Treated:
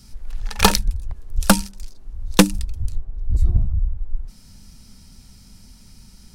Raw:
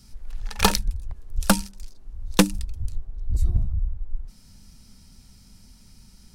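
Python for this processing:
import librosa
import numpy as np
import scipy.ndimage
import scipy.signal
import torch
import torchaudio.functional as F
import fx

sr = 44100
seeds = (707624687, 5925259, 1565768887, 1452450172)

y = fx.high_shelf(x, sr, hz=3400.0, db=-9.0, at=(3.01, 3.98))
y = y * 10.0 ** (4.5 / 20.0)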